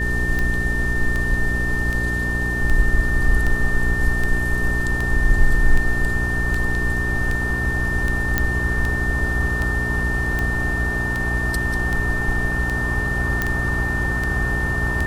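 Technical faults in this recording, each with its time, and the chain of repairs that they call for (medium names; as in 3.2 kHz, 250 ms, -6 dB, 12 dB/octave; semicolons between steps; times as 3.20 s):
hum 60 Hz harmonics 7 -25 dBFS
tick 78 rpm -11 dBFS
whine 1.8 kHz -23 dBFS
8.38 s: pop -4 dBFS
13.42 s: pop -7 dBFS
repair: de-click; de-hum 60 Hz, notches 7; band-stop 1.8 kHz, Q 30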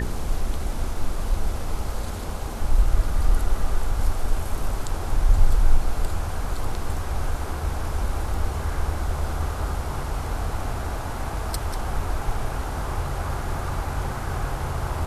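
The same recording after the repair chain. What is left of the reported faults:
nothing left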